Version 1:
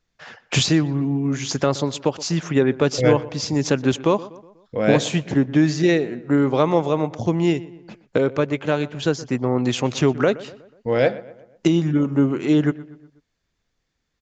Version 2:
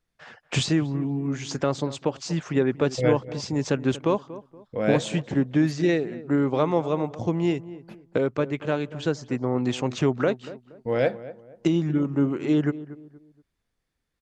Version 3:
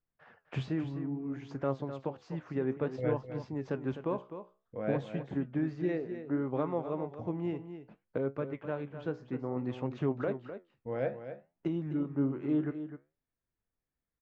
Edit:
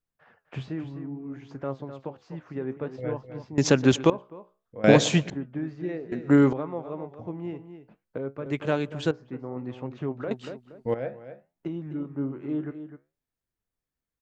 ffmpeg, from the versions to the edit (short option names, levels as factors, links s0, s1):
-filter_complex "[0:a]asplit=3[s0][s1][s2];[1:a]asplit=2[s3][s4];[2:a]asplit=6[s5][s6][s7][s8][s9][s10];[s5]atrim=end=3.582[s11];[s0]atrim=start=3.578:end=4.102[s12];[s6]atrim=start=4.098:end=4.842[s13];[s1]atrim=start=4.838:end=5.302[s14];[s7]atrim=start=5.298:end=6.122[s15];[s2]atrim=start=6.118:end=6.532[s16];[s8]atrim=start=6.528:end=8.462[s17];[s3]atrim=start=8.458:end=9.112[s18];[s9]atrim=start=9.108:end=10.312[s19];[s4]atrim=start=10.308:end=10.942[s20];[s10]atrim=start=10.938[s21];[s11][s12]acrossfade=d=0.004:c1=hsin:c2=hsin[s22];[s22][s13]acrossfade=d=0.004:c1=hsin:c2=hsin[s23];[s23][s14]acrossfade=d=0.004:c1=hsin:c2=hsin[s24];[s24][s15]acrossfade=d=0.004:c1=hsin:c2=hsin[s25];[s25][s16]acrossfade=d=0.004:c1=hsin:c2=hsin[s26];[s26][s17]acrossfade=d=0.004:c1=hsin:c2=hsin[s27];[s27][s18]acrossfade=d=0.004:c1=hsin:c2=hsin[s28];[s28][s19]acrossfade=d=0.004:c1=hsin:c2=hsin[s29];[s29][s20]acrossfade=d=0.004:c1=hsin:c2=hsin[s30];[s30][s21]acrossfade=d=0.004:c1=hsin:c2=hsin"